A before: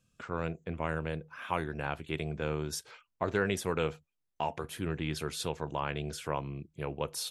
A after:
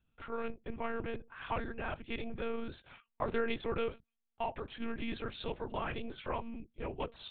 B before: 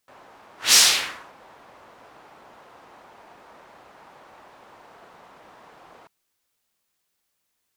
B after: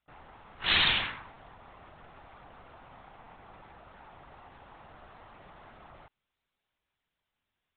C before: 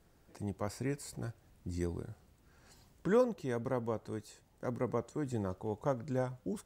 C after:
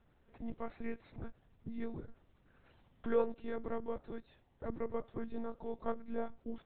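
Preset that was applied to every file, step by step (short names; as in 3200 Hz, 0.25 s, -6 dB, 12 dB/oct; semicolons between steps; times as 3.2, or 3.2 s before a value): monotone LPC vocoder at 8 kHz 230 Hz; gain -3 dB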